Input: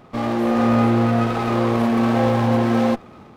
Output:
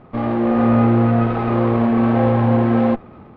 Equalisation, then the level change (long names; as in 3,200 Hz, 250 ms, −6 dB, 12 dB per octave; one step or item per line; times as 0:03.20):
high-frequency loss of the air 350 metres
bass and treble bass −4 dB, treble −4 dB
low-shelf EQ 190 Hz +9 dB
+1.5 dB